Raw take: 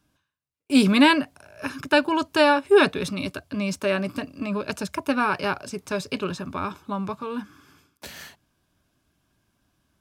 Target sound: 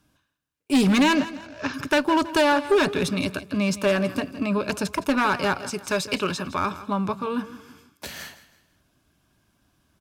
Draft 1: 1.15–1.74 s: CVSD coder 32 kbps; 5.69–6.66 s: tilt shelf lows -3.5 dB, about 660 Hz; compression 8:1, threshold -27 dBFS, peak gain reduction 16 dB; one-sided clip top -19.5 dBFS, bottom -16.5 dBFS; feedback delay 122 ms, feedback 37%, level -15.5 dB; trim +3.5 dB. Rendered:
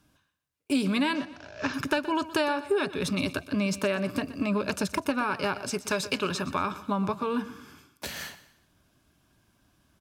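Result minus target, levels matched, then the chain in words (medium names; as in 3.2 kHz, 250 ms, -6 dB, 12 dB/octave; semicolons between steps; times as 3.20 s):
compression: peak gain reduction +10 dB; echo 41 ms early
1.15–1.74 s: CVSD coder 32 kbps; 5.69–6.66 s: tilt shelf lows -3.5 dB, about 660 Hz; compression 8:1, threshold -15.5 dBFS, peak gain reduction 6 dB; one-sided clip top -19.5 dBFS, bottom -16.5 dBFS; feedback delay 163 ms, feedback 37%, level -15.5 dB; trim +3.5 dB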